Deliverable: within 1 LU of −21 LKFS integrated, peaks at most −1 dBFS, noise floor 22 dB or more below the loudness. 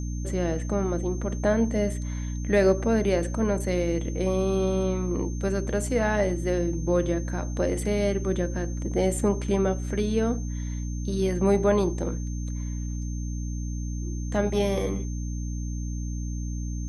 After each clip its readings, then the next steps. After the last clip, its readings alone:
mains hum 60 Hz; hum harmonics up to 300 Hz; level of the hum −28 dBFS; interfering tone 6,300 Hz; level of the tone −45 dBFS; integrated loudness −27.0 LKFS; sample peak −8.5 dBFS; target loudness −21.0 LKFS
→ hum removal 60 Hz, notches 5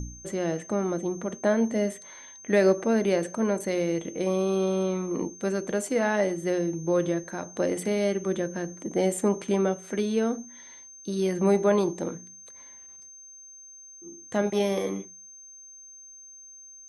mains hum none found; interfering tone 6,300 Hz; level of the tone −45 dBFS
→ notch filter 6,300 Hz, Q 30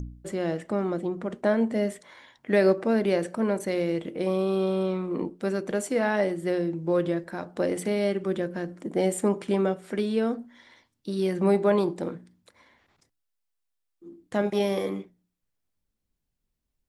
interfering tone none found; integrated loudness −27.0 LKFS; sample peak −9.0 dBFS; target loudness −21.0 LKFS
→ level +6 dB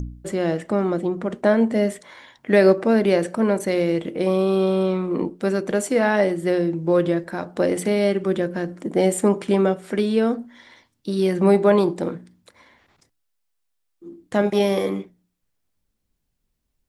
integrated loudness −21.0 LKFS; sample peak −3.0 dBFS; background noise floor −74 dBFS

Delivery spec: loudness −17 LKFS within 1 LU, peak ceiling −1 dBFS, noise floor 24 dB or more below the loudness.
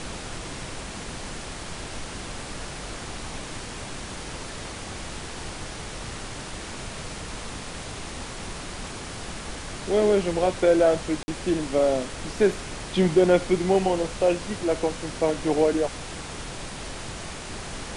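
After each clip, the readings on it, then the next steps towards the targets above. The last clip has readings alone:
number of dropouts 1; longest dropout 50 ms; background noise floor −37 dBFS; target noise floor −52 dBFS; integrated loudness −27.5 LKFS; sample peak −8.0 dBFS; target loudness −17.0 LKFS
→ repair the gap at 0:11.23, 50 ms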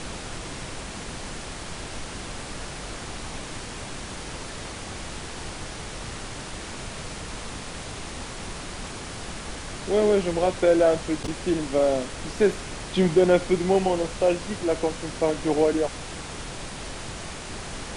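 number of dropouts 0; background noise floor −37 dBFS; target noise floor −52 dBFS
→ noise reduction from a noise print 15 dB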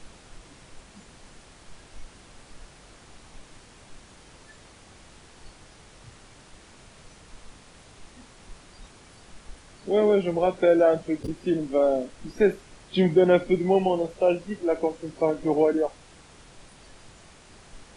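background noise floor −52 dBFS; integrated loudness −23.5 LKFS; sample peak −8.0 dBFS; target loudness −17.0 LKFS
→ level +6.5 dB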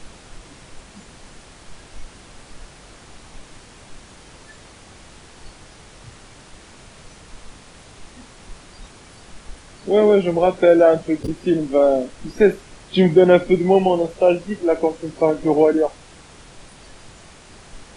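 integrated loudness −17.0 LKFS; sample peak −1.5 dBFS; background noise floor −45 dBFS

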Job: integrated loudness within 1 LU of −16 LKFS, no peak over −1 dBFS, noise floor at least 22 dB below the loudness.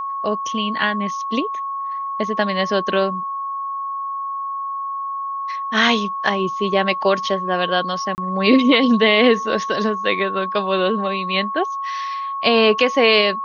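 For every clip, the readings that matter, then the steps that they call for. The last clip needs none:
number of dropouts 1; longest dropout 29 ms; interfering tone 1,100 Hz; level of the tone −23 dBFS; integrated loudness −19.5 LKFS; sample peak −2.5 dBFS; target loudness −16.0 LKFS
→ repair the gap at 0:08.15, 29 ms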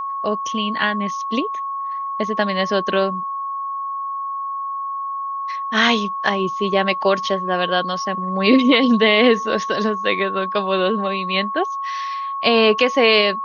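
number of dropouts 0; interfering tone 1,100 Hz; level of the tone −23 dBFS
→ notch filter 1,100 Hz, Q 30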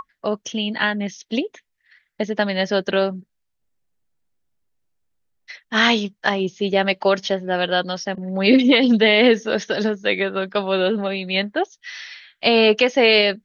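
interfering tone none found; integrated loudness −19.0 LKFS; sample peak −3.0 dBFS; target loudness −16.0 LKFS
→ level +3 dB
brickwall limiter −1 dBFS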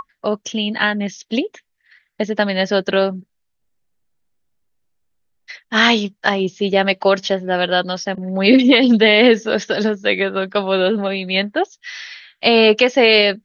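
integrated loudness −16.5 LKFS; sample peak −1.0 dBFS; background noise floor −71 dBFS

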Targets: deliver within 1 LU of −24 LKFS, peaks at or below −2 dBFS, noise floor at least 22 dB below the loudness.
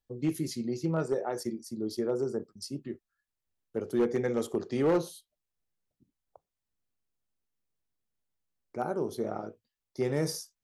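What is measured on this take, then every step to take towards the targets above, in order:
share of clipped samples 0.4%; peaks flattened at −20.5 dBFS; integrated loudness −32.5 LKFS; sample peak −20.5 dBFS; target loudness −24.0 LKFS
→ clipped peaks rebuilt −20.5 dBFS
level +8.5 dB

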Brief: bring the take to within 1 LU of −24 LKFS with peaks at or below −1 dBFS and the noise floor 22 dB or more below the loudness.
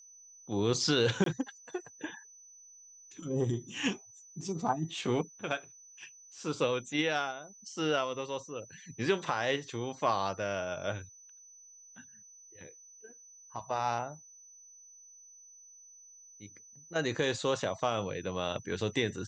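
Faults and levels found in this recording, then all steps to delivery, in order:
number of dropouts 1; longest dropout 23 ms; interfering tone 6,000 Hz; level of the tone −53 dBFS; integrated loudness −33.5 LKFS; sample peak −14.5 dBFS; target loudness −24.0 LKFS
→ repair the gap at 0:01.24, 23 ms
notch filter 6,000 Hz, Q 30
level +9.5 dB

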